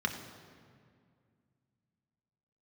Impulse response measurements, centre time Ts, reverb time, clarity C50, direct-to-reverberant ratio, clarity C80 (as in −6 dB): 28 ms, 2.2 s, 8.0 dB, 3.0 dB, 9.0 dB